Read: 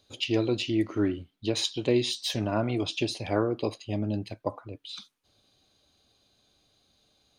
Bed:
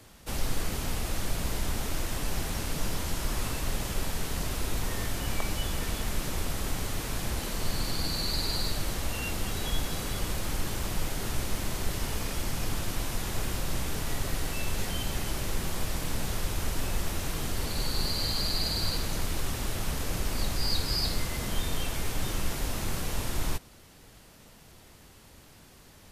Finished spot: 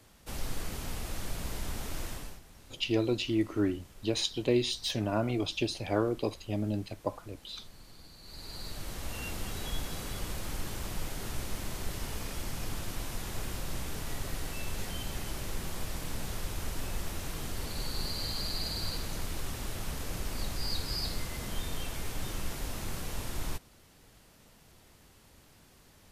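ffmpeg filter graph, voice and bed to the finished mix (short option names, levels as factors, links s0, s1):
-filter_complex "[0:a]adelay=2600,volume=0.75[s0];[1:a]volume=3.55,afade=t=out:st=2.07:d=0.33:silence=0.149624,afade=t=in:st=8.21:d=1.01:silence=0.141254[s1];[s0][s1]amix=inputs=2:normalize=0"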